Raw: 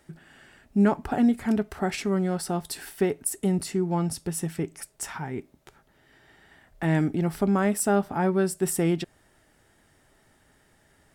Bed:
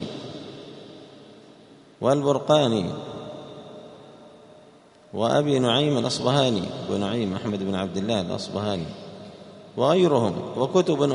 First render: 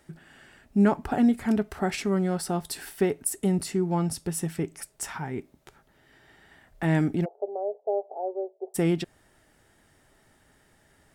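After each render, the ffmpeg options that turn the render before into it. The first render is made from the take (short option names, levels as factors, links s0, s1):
-filter_complex "[0:a]asplit=3[s0][s1][s2];[s0]afade=t=out:st=7.24:d=0.02[s3];[s1]asuperpass=centerf=560:order=8:qfactor=1.6,afade=t=in:st=7.24:d=0.02,afade=t=out:st=8.74:d=0.02[s4];[s2]afade=t=in:st=8.74:d=0.02[s5];[s3][s4][s5]amix=inputs=3:normalize=0"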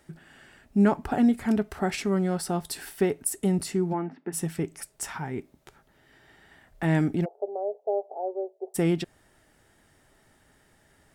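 -filter_complex "[0:a]asplit=3[s0][s1][s2];[s0]afade=t=out:st=3.92:d=0.02[s3];[s1]highpass=f=230:w=0.5412,highpass=f=230:w=1.3066,equalizer=f=260:t=q:w=4:g=8,equalizer=f=530:t=q:w=4:g=-8,equalizer=f=1200:t=q:w=4:g=-4,equalizer=f=1900:t=q:w=4:g=3,lowpass=f=2100:w=0.5412,lowpass=f=2100:w=1.3066,afade=t=in:st=3.92:d=0.02,afade=t=out:st=4.32:d=0.02[s4];[s2]afade=t=in:st=4.32:d=0.02[s5];[s3][s4][s5]amix=inputs=3:normalize=0"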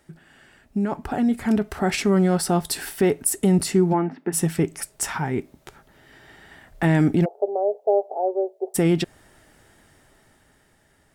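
-af "alimiter=limit=0.133:level=0:latency=1:release=15,dynaudnorm=f=270:g=11:m=2.51"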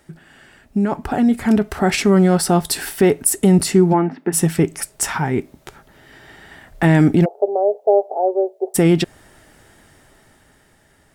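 -af "volume=1.88"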